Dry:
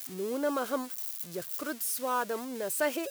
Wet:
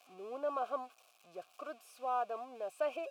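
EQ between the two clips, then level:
formant filter a
+4.5 dB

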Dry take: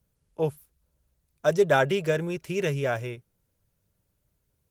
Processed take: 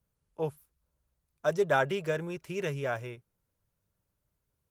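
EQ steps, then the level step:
parametric band 1,100 Hz +5 dB 1.2 octaves
−7.0 dB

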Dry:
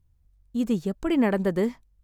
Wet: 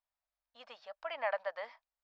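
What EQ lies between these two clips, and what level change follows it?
elliptic high-pass filter 610 Hz, stop band 40 dB
low-pass with resonance 5,300 Hz, resonance Q 5.2
high-frequency loss of the air 420 metres
−2.5 dB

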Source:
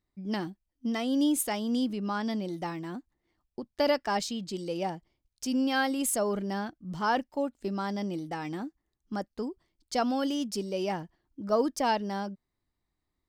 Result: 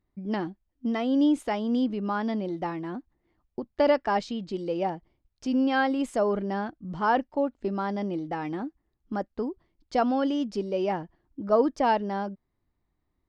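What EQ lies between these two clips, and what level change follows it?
head-to-tape spacing loss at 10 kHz 28 dB
dynamic equaliser 160 Hz, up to −5 dB, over −44 dBFS, Q 1
+6.5 dB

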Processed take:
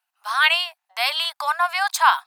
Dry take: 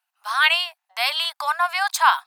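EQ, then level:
low-shelf EQ 410 Hz +3.5 dB
0.0 dB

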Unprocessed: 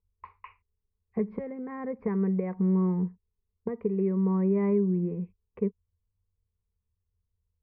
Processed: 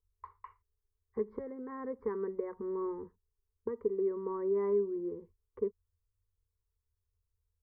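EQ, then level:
phaser with its sweep stopped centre 680 Hz, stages 6
−1.5 dB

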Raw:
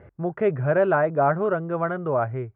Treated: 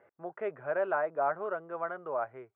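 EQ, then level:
high-pass filter 690 Hz 12 dB per octave
high-frequency loss of the air 100 metres
spectral tilt −2 dB per octave
−6.5 dB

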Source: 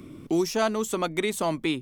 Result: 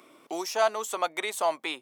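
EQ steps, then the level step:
high-pass with resonance 720 Hz, resonance Q 1.7
−1.5 dB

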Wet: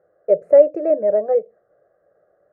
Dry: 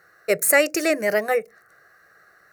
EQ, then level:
low-pass with resonance 570 Hz, resonance Q 6.1
−5.5 dB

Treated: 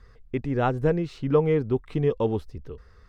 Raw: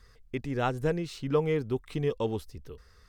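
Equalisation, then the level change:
low-pass filter 1,400 Hz 6 dB per octave
+6.0 dB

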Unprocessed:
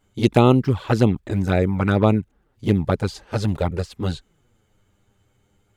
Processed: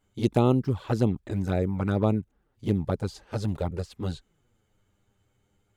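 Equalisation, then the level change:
dynamic equaliser 2,200 Hz, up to −7 dB, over −38 dBFS, Q 0.73
−6.5 dB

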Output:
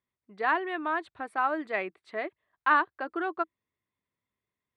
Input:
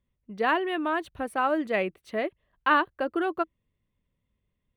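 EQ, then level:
loudspeaker in its box 140–8,600 Hz, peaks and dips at 160 Hz −8 dB, 230 Hz −6 dB, 530 Hz −8 dB, 2,900 Hz −8 dB, 6,000 Hz −10 dB
low-shelf EQ 460 Hz −9 dB
high-shelf EQ 5,300 Hz −9.5 dB
+1.5 dB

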